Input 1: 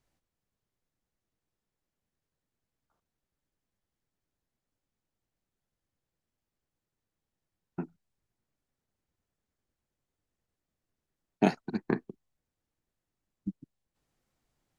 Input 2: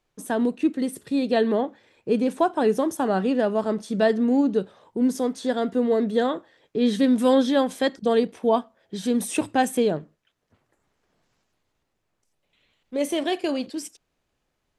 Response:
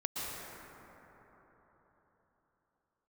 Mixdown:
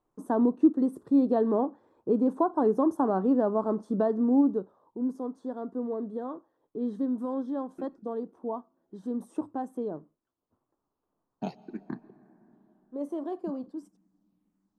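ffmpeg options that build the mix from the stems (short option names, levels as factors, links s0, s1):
-filter_complex "[0:a]asplit=2[s0][s1];[s1]afreqshift=-1.8[s2];[s0][s2]amix=inputs=2:normalize=1,volume=0.316,asplit=2[s3][s4];[s4]volume=0.0944[s5];[1:a]alimiter=limit=0.224:level=0:latency=1:release=421,highshelf=f=1600:t=q:w=3:g=-13.5,volume=0.473,afade=t=out:st=4.19:d=0.6:silence=0.354813[s6];[2:a]atrim=start_sample=2205[s7];[s5][s7]afir=irnorm=-1:irlink=0[s8];[s3][s6][s8]amix=inputs=3:normalize=0,equalizer=f=300:w=1.5:g=8.5"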